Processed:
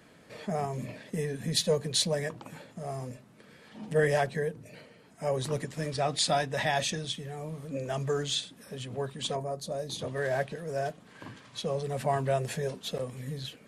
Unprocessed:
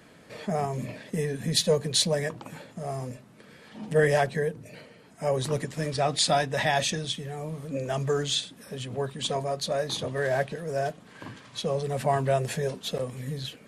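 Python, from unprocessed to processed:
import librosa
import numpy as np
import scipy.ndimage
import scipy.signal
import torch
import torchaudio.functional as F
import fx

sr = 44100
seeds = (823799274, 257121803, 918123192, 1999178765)

y = fx.peak_eq(x, sr, hz=fx.line((9.35, 4500.0), (9.99, 1100.0)), db=-13.0, octaves=2.0, at=(9.35, 9.99), fade=0.02)
y = y * 10.0 ** (-3.5 / 20.0)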